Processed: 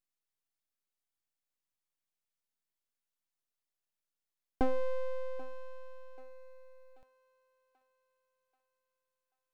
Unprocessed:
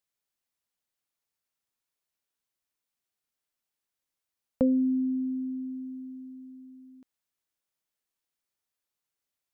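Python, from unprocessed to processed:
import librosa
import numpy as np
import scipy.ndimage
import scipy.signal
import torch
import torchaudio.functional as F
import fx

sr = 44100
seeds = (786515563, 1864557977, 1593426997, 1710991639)

y = np.abs(x)
y = fx.echo_thinned(y, sr, ms=785, feedback_pct=50, hz=390.0, wet_db=-17)
y = F.gain(torch.from_numpy(y), -3.5).numpy()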